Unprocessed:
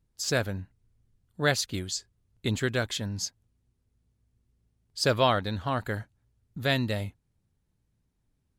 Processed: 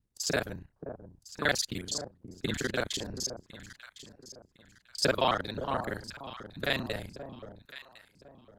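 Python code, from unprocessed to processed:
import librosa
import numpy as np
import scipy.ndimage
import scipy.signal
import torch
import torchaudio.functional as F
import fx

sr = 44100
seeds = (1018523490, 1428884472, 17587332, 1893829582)

y = fx.local_reverse(x, sr, ms=33.0)
y = fx.hpss(y, sr, part='harmonic', gain_db=-13)
y = fx.echo_alternate(y, sr, ms=528, hz=1000.0, feedback_pct=53, wet_db=-9.5)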